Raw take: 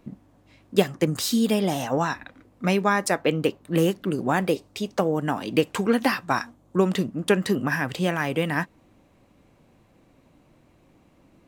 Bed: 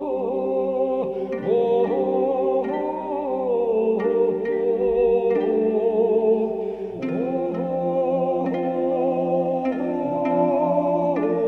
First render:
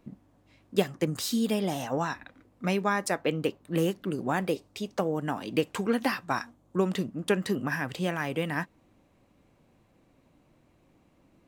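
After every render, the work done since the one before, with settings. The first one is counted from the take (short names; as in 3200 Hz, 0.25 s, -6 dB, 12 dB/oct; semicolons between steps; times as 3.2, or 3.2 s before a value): gain -5.5 dB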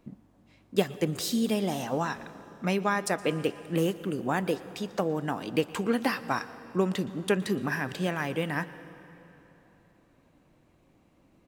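echo 0.117 s -23.5 dB; plate-style reverb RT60 3.5 s, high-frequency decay 0.7×, pre-delay 0.11 s, DRR 15.5 dB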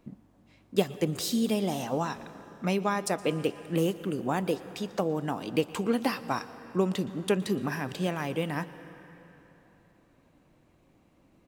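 dynamic EQ 1700 Hz, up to -6 dB, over -46 dBFS, Q 2.1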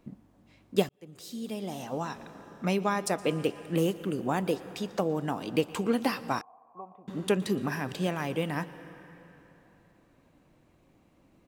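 0.89–2.62 fade in; 6.41–7.08 vocal tract filter a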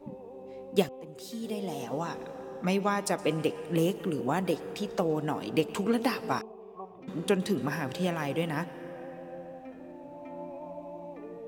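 add bed -21.5 dB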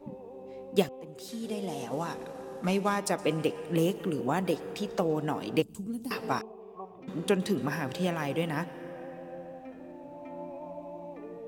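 1.28–3 CVSD 64 kbps; 5.62–6.11 EQ curve 110 Hz 0 dB, 270 Hz -8 dB, 420 Hz -19 dB, 2000 Hz -28 dB, 5800 Hz -11 dB, 8600 Hz -4 dB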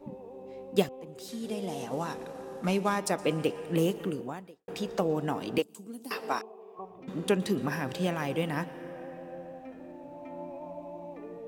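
4.05–4.68 fade out quadratic; 5.58–6.79 HPF 340 Hz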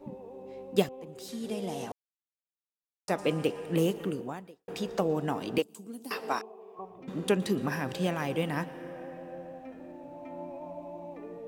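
1.92–3.08 mute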